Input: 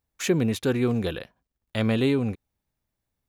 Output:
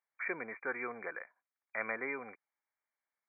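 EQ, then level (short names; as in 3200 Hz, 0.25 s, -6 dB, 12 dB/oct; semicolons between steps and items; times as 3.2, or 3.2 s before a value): HPF 1100 Hz 12 dB/oct; brick-wall FIR low-pass 2400 Hz; 0.0 dB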